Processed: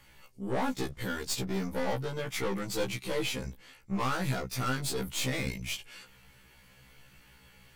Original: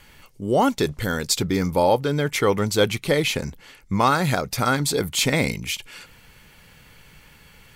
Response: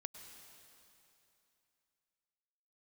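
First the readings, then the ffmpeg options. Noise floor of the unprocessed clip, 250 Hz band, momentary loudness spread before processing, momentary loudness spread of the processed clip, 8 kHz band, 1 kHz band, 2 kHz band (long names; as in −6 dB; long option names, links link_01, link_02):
−51 dBFS, −10.5 dB, 9 LU, 7 LU, −10.5 dB, −13.0 dB, −10.5 dB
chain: -af "aeval=exprs='(tanh(12.6*val(0)+0.5)-tanh(0.5))/12.6':channel_layout=same,afftfilt=real='re*1.73*eq(mod(b,3),0)':imag='im*1.73*eq(mod(b,3),0)':win_size=2048:overlap=0.75,volume=-3.5dB"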